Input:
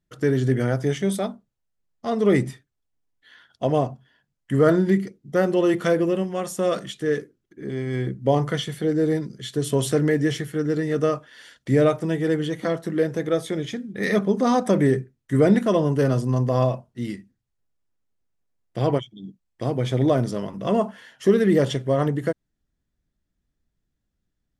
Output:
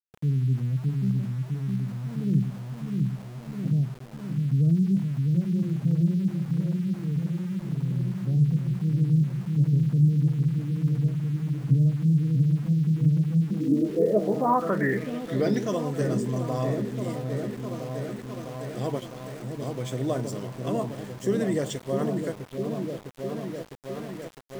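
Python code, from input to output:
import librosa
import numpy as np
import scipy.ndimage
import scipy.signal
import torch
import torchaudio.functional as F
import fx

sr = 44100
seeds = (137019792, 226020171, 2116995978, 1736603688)

y = fx.echo_opening(x, sr, ms=656, hz=400, octaves=1, feedback_pct=70, wet_db=-3)
y = fx.filter_sweep_lowpass(y, sr, from_hz=160.0, to_hz=7800.0, start_s=13.37, end_s=15.78, q=5.9)
y = np.where(np.abs(y) >= 10.0 ** (-32.0 / 20.0), y, 0.0)
y = y * 10.0 ** (-8.5 / 20.0)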